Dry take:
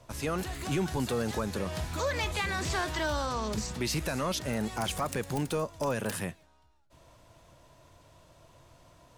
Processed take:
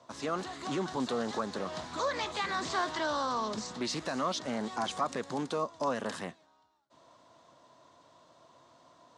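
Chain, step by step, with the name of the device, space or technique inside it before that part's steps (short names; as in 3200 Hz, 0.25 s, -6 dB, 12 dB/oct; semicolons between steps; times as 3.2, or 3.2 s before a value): full-range speaker at full volume (Doppler distortion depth 0.2 ms; speaker cabinet 220–7500 Hz, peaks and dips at 250 Hz +5 dB, 730 Hz +3 dB, 1100 Hz +7 dB, 2500 Hz -6 dB, 3900 Hz +4 dB); gain -2.5 dB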